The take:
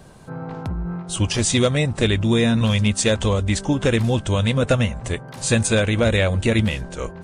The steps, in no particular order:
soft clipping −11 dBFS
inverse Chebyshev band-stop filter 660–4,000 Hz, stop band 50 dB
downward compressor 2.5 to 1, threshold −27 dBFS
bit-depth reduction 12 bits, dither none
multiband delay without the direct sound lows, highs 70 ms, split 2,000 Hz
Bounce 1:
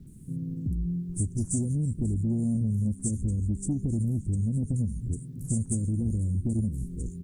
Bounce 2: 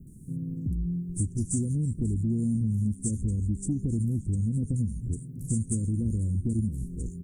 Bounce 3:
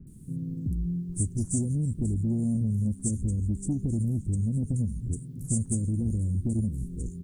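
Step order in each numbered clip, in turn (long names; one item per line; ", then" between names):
inverse Chebyshev band-stop filter, then soft clipping, then multiband delay without the direct sound, then bit-depth reduction, then downward compressor
multiband delay without the direct sound, then bit-depth reduction, then inverse Chebyshev band-stop filter, then downward compressor, then soft clipping
inverse Chebyshev band-stop filter, then soft clipping, then downward compressor, then bit-depth reduction, then multiband delay without the direct sound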